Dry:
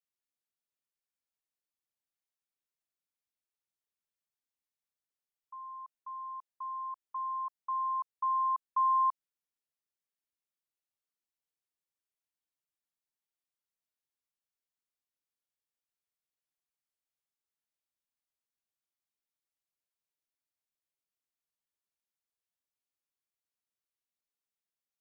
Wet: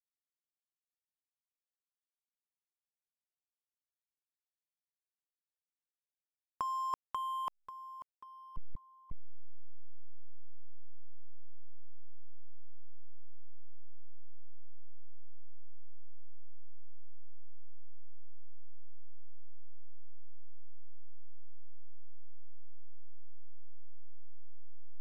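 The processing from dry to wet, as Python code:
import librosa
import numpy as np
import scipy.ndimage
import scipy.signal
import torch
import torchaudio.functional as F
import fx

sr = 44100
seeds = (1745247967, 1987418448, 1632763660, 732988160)

y = fx.delta_hold(x, sr, step_db=-38.0)
y = fx.over_compress(y, sr, threshold_db=-42.0, ratio=-0.5)
y = fx.lowpass(y, sr, hz=1100.0, slope=6)
y = y * 10.0 ** (12.5 / 20.0)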